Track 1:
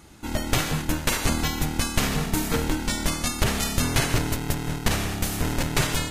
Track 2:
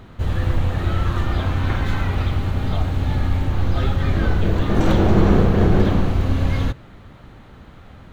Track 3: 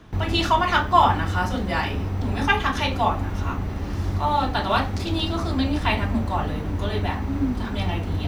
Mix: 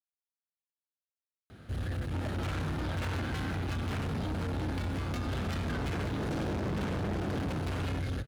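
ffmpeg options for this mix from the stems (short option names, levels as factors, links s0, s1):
-filter_complex "[0:a]highpass=f=110:w=0.5412,highpass=f=110:w=1.3066,highshelf=f=7800:g=-8.5,acompressor=threshold=0.0562:ratio=6,adelay=1900,volume=1.19[s0];[1:a]equalizer=f=1000:t=o:w=0.33:g=-12,equalizer=f=1600:t=o:w=0.33:g=5,equalizer=f=5000:t=o:w=0.33:g=5,equalizer=f=10000:t=o:w=0.33:g=12,asoftclip=type=hard:threshold=0.178,adelay=1500,volume=0.398[s1];[s0]adynamicsmooth=sensitivity=4.5:basefreq=670,alimiter=level_in=1.06:limit=0.0631:level=0:latency=1:release=78,volume=0.944,volume=1[s2];[s1][s2]amix=inputs=2:normalize=0,highpass=f=56:w=0.5412,highpass=f=56:w=1.3066,equalizer=f=1900:t=o:w=0.21:g=-4,asoftclip=type=tanh:threshold=0.0335"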